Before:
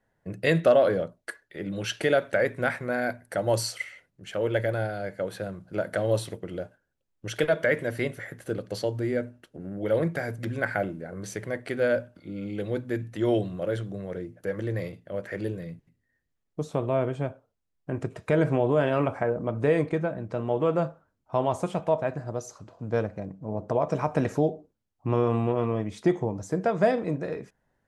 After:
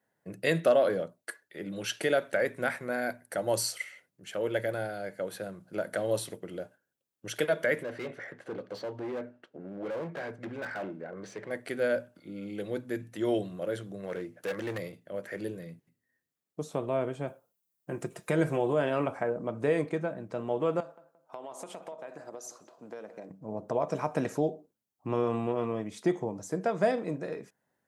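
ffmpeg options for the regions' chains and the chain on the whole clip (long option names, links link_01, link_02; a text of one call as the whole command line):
ffmpeg -i in.wav -filter_complex "[0:a]asettb=1/sr,asplit=3[link_01][link_02][link_03];[link_01]atrim=end=7.834[link_04];[link_02]atrim=start=7.83:end=11.51,asetpts=PTS-STARTPTS,afade=type=in:duration=0.004:curve=qsin,afade=type=out:start_time=3.676:duration=0.004:curve=qsin,lowpass=5600,asoftclip=type=hard:threshold=-28dB,asplit=2[link_05][link_06];[link_06]highpass=frequency=720:poles=1,volume=14dB,asoftclip=type=tanh:threshold=-23dB[link_07];[link_05][link_07]amix=inputs=2:normalize=0,lowpass=frequency=1000:poles=1,volume=-6dB[link_08];[link_03]atrim=start=11.506[link_09];[link_04][link_08]acrossfade=duration=0.004:curve1=hsin:curve2=qsin[link_10];[link_10][link_09]acrossfade=duration=0.004:curve1=qsin:curve2=hsin,asettb=1/sr,asplit=3[link_11][link_12][link_13];[link_11]atrim=end=14.034[link_14];[link_12]atrim=start=14.03:end=14.78,asetpts=PTS-STARTPTS,afade=type=in:duration=0.004:curve=qsin,afade=type=out:start_time=0.746:duration=0.004:curve=qsin,equalizer=frequency=1900:width=0.3:gain=8,asoftclip=type=hard:threshold=-24.5dB[link_15];[link_13]atrim=start=14.776[link_16];[link_14][link_15]acrossfade=duration=0.004:curve1=hsin:curve2=qsin[link_17];[link_17][link_16]acrossfade=duration=0.004:curve1=qsin:curve2=hsin,asettb=1/sr,asplit=3[link_18][link_19][link_20];[link_18]atrim=end=17.274[link_21];[link_19]atrim=start=17.27:end=18.73,asetpts=PTS-STARTPTS,afade=type=in:duration=0.004:curve=qsin,afade=type=out:start_time=1.456:duration=0.004:curve=qsin,highshelf=frequency=7900:gain=11.5,aecho=1:1:5.7:0.4,atrim=end_sample=64386[link_22];[link_20]atrim=start=18.726[link_23];[link_21][link_22]acrossfade=duration=0.004:curve1=hsin:curve2=qsin[link_24];[link_24][link_23]acrossfade=duration=0.004:curve1=qsin:curve2=hsin,asettb=1/sr,asplit=3[link_25][link_26][link_27];[link_25]atrim=end=20.804[link_28];[link_26]atrim=start=20.8:end=23.3,asetpts=PTS-STARTPTS,afade=type=in:duration=0.004:curve=qsin,afade=type=out:start_time=2.496:duration=0.004:curve=qsin,highpass=310,acompressor=threshold=-33dB:ratio=12:attack=3.2:release=140:knee=1:detection=peak,asplit=2[link_29][link_30];[link_30]adelay=174,lowpass=frequency=1500:poles=1,volume=-13dB,asplit=2[link_31][link_32];[link_32]adelay=174,lowpass=frequency=1500:poles=1,volume=0.37,asplit=2[link_33][link_34];[link_34]adelay=174,lowpass=frequency=1500:poles=1,volume=0.37,asplit=2[link_35][link_36];[link_36]adelay=174,lowpass=frequency=1500:poles=1,volume=0.37[link_37];[link_29][link_31][link_33][link_35][link_37]amix=inputs=5:normalize=0,atrim=end_sample=110250[link_38];[link_27]atrim=start=23.296[link_39];[link_28][link_38]acrossfade=duration=0.004:curve1=hsin:curve2=qsin[link_40];[link_40][link_39]acrossfade=duration=0.004:curve1=qsin:curve2=hsin,highpass=160,highshelf=frequency=7800:gain=10.5,volume=-4dB" out.wav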